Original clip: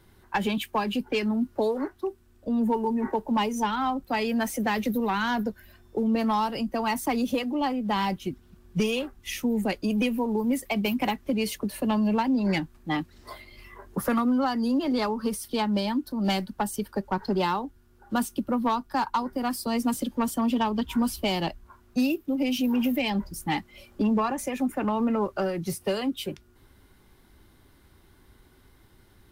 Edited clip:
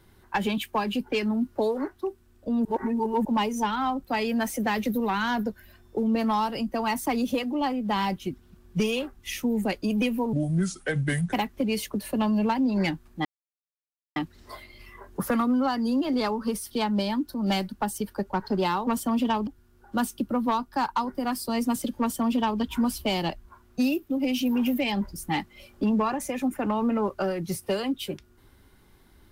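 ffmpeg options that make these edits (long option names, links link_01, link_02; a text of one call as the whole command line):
ffmpeg -i in.wav -filter_complex "[0:a]asplit=8[link_01][link_02][link_03][link_04][link_05][link_06][link_07][link_08];[link_01]atrim=end=2.652[link_09];[link_02]atrim=start=2.648:end=3.252,asetpts=PTS-STARTPTS,areverse[link_10];[link_03]atrim=start=3.248:end=10.334[link_11];[link_04]atrim=start=10.33:end=11.02,asetpts=PTS-STARTPTS,asetrate=30429,aresample=44100[link_12];[link_05]atrim=start=11.016:end=12.94,asetpts=PTS-STARTPTS,afade=type=out:start_time=1.92:duration=0.004:curve=hsin,apad=pad_dur=0.91[link_13];[link_06]atrim=start=12.94:end=17.652,asetpts=PTS-STARTPTS,afade=type=in:duration=0.004:curve=hsin[link_14];[link_07]atrim=start=20.178:end=20.782[link_15];[link_08]atrim=start=17.648[link_16];[link_09][link_10]acrossfade=duration=0.004:curve1=hsin:curve2=hsin[link_17];[link_17][link_11]acrossfade=duration=0.004:curve1=hsin:curve2=hsin[link_18];[link_18][link_12]acrossfade=duration=0.004:curve1=hsin:curve2=hsin[link_19];[link_13][link_14]concat=n=2:v=0:a=1[link_20];[link_19][link_20]acrossfade=duration=0.004:curve1=hsin:curve2=hsin[link_21];[link_21][link_15]acrossfade=duration=0.004:curve1=hsin:curve2=hsin[link_22];[link_22][link_16]acrossfade=duration=0.004:curve1=hsin:curve2=hsin" out.wav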